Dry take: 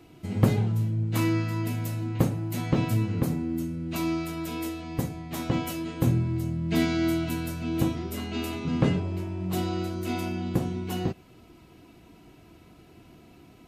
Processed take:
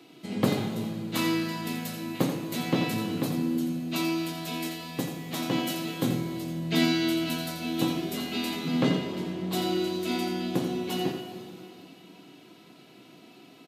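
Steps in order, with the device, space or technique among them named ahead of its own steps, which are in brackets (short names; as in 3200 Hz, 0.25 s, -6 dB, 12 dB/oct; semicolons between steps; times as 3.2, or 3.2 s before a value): PA in a hall (HPF 170 Hz 24 dB/oct; bell 3800 Hz +8 dB 0.9 oct; echo 85 ms -8.5 dB; reverb RT60 3.0 s, pre-delay 3 ms, DRR 7 dB)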